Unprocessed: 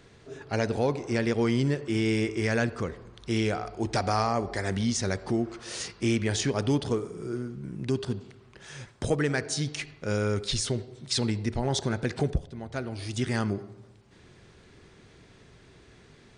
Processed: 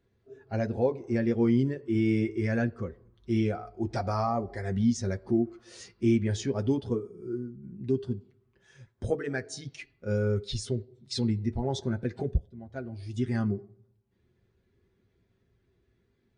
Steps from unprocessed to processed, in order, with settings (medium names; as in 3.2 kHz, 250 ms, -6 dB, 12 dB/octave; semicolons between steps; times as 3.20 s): comb of notches 150 Hz; spectral contrast expander 1.5:1